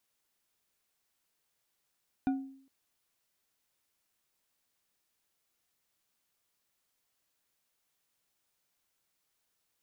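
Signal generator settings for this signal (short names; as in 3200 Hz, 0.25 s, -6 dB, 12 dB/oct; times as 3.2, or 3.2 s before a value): glass hit bar, length 0.41 s, lowest mode 269 Hz, decay 0.60 s, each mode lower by 9 dB, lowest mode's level -24 dB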